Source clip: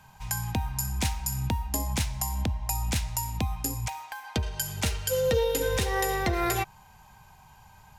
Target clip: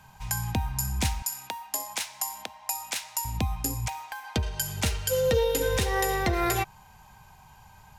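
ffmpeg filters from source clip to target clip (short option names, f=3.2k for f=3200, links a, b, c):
-filter_complex "[0:a]asettb=1/sr,asplit=3[a][b][c];[a]atrim=end=1.224[d];[b]atrim=start=1.22:end=3.25,asetpts=PTS-STARTPTS,afade=t=in:d=0.004:c=qsin,afade=t=out:st=2.026:d=0.004:c=qsin,highpass=700[e];[c]atrim=start=3.246[f];[d][e]acrossfade=d=0.004:c1=hsin:c2=qsin[g];[g][f]acrossfade=d=0.004:c1=qsin:c2=hsin,volume=1dB"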